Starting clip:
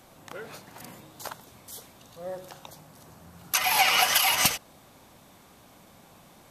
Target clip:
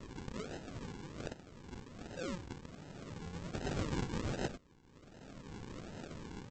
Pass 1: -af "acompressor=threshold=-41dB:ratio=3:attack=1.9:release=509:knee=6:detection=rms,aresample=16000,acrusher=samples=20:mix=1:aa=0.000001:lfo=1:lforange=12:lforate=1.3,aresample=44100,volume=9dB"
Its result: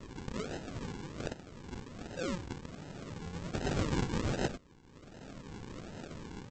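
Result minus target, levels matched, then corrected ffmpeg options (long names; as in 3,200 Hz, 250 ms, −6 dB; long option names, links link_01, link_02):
downward compressor: peak gain reduction −4.5 dB
-af "acompressor=threshold=-48dB:ratio=3:attack=1.9:release=509:knee=6:detection=rms,aresample=16000,acrusher=samples=20:mix=1:aa=0.000001:lfo=1:lforange=12:lforate=1.3,aresample=44100,volume=9dB"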